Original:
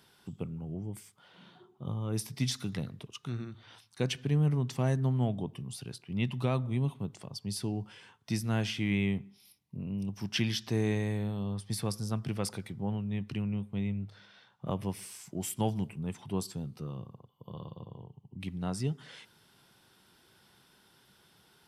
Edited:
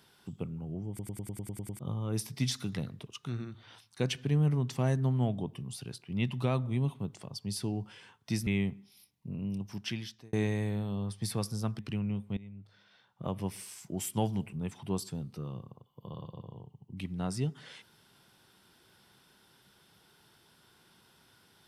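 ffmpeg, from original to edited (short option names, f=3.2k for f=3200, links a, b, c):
-filter_complex "[0:a]asplit=14[a][b][c][d][e][f][g][h][i][j][k][l][m][n];[a]atrim=end=0.992[o];[b]atrim=start=0.888:end=0.992[p];[c]atrim=start=0.888:end=0.992[q];[d]atrim=start=0.888:end=0.992[r];[e]atrim=start=0.888:end=0.992[s];[f]atrim=start=0.888:end=0.992[t];[g]atrim=start=0.888:end=0.992[u];[h]atrim=start=0.888:end=0.992[v];[i]atrim=start=0.888:end=0.992[w];[j]atrim=start=1.788:end=8.472[x];[k]atrim=start=8.948:end=10.81,asetpts=PTS-STARTPTS,afade=t=out:st=1.012:d=0.85[y];[l]atrim=start=10.81:end=12.272,asetpts=PTS-STARTPTS,afade=t=in:d=0.004:c=hsin[z];[m]atrim=start=13.218:end=13.8,asetpts=PTS-STARTPTS,afade=t=out:st=0.578:d=0.004:c=hsin:silence=0.11885[aa];[n]atrim=start=13.8,asetpts=PTS-STARTPTS,afade=t=in:d=1.16:silence=0.11885[ab];[o][p]acrossfade=d=0.004:c1=hsin:c2=hsin[ac];[ac][q]acrossfade=d=0.004:c1=hsin:c2=hsin[ad];[ad][r]acrossfade=d=0.004:c1=hsin:c2=hsin[ae];[ae][s]acrossfade=d=0.004:c1=hsin:c2=hsin[af];[af][t]acrossfade=d=0.004:c1=hsin:c2=hsin[ag];[ag][u]acrossfade=d=0.004:c1=hsin:c2=hsin[ah];[ah][v]acrossfade=d=0.004:c1=hsin:c2=hsin[ai];[ai][w]acrossfade=d=0.004:c1=hsin:c2=hsin[aj];[aj][x]acrossfade=d=0.004:c1=hsin:c2=hsin[ak];[y][z]concat=n=2:v=0:a=1[al];[ak][al]acrossfade=d=0.004:c1=hsin:c2=hsin[am];[aa][ab]concat=n=2:v=0:a=1[an];[am][an]acrossfade=d=0.004:c1=hsin:c2=hsin"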